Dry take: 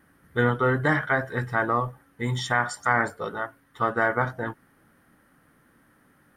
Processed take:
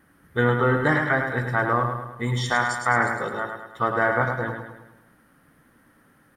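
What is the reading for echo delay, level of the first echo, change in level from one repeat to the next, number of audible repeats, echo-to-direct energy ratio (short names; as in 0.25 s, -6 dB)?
0.105 s, -6.0 dB, -6.0 dB, 5, -5.0 dB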